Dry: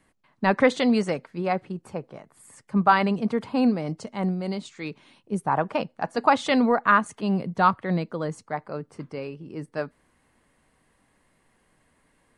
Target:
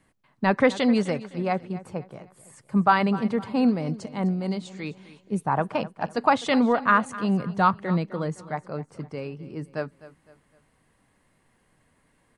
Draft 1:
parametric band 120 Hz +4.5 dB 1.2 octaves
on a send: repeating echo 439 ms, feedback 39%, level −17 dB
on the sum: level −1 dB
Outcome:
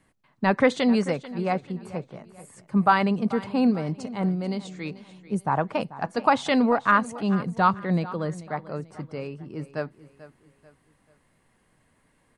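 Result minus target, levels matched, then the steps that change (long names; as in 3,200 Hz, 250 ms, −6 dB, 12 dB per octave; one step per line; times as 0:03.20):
echo 184 ms late
change: repeating echo 255 ms, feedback 39%, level −17 dB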